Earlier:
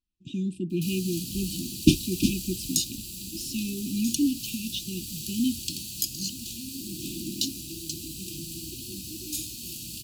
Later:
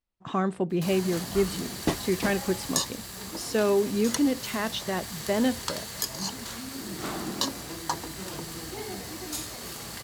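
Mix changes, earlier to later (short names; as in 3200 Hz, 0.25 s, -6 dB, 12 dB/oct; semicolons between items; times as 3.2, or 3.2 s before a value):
first sound: add high shelf 11000 Hz -6.5 dB; second sound -10.0 dB; master: remove brick-wall FIR band-stop 370–2400 Hz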